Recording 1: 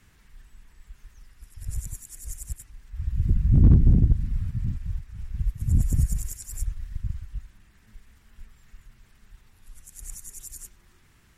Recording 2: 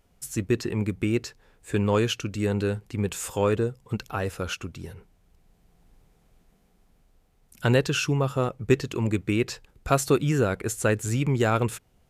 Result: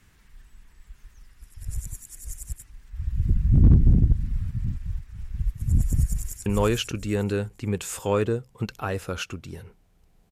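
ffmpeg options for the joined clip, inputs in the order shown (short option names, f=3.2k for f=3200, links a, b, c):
-filter_complex "[0:a]apad=whole_dur=10.31,atrim=end=10.31,atrim=end=6.462[a];[1:a]atrim=start=1.768:end=5.62[b];[a][b]acrossfade=d=0.004:c1=hsin:c2=hsin,asplit=2[c][d];[d]afade=t=in:st=6.04:d=0.01,afade=t=out:st=6.46:d=0.01,aecho=0:1:450|900|1350|1800:0.668344|0.167086|0.0417715|0.0104429[e];[c][e]amix=inputs=2:normalize=0"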